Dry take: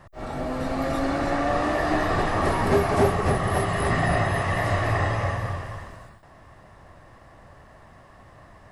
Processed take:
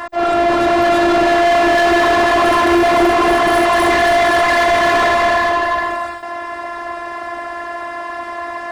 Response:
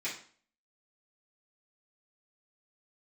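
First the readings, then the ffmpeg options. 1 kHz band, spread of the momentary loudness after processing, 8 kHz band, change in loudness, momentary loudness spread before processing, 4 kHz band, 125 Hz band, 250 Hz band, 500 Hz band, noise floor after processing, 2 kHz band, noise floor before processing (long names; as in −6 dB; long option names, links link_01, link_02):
+13.5 dB, 14 LU, +10.5 dB, +11.5 dB, 10 LU, +15.5 dB, −8.0 dB, +10.5 dB, +12.5 dB, −27 dBFS, +13.5 dB, −51 dBFS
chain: -filter_complex "[0:a]afftfilt=real='hypot(re,im)*cos(PI*b)':imag='0':win_size=512:overlap=0.75,asplit=2[link_01][link_02];[link_02]highpass=frequency=720:poles=1,volume=35dB,asoftclip=type=tanh:threshold=-8.5dB[link_03];[link_01][link_03]amix=inputs=2:normalize=0,lowpass=frequency=2800:poles=1,volume=-6dB,volume=3.5dB"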